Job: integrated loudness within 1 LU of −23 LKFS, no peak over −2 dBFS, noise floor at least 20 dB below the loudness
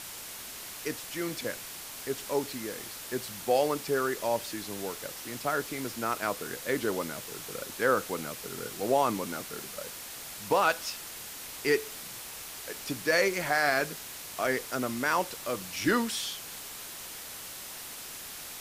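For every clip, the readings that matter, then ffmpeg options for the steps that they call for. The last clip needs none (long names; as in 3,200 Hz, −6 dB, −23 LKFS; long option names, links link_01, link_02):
background noise floor −43 dBFS; target noise floor −52 dBFS; integrated loudness −32.0 LKFS; sample peak −12.5 dBFS; target loudness −23.0 LKFS
→ -af "afftdn=noise_reduction=9:noise_floor=-43"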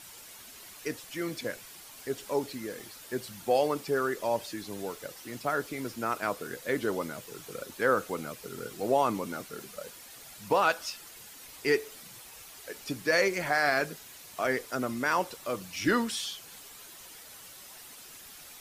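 background noise floor −49 dBFS; target noise floor −51 dBFS
→ -af "afftdn=noise_reduction=6:noise_floor=-49"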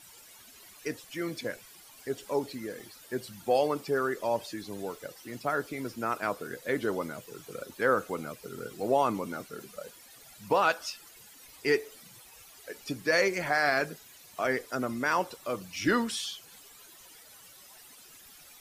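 background noise floor −53 dBFS; integrated loudness −31.0 LKFS; sample peak −13.0 dBFS; target loudness −23.0 LKFS
→ -af "volume=8dB"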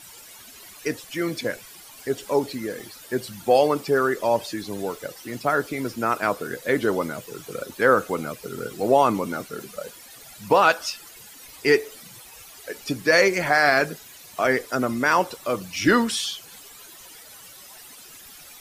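integrated loudness −23.0 LKFS; sample peak −5.0 dBFS; background noise floor −45 dBFS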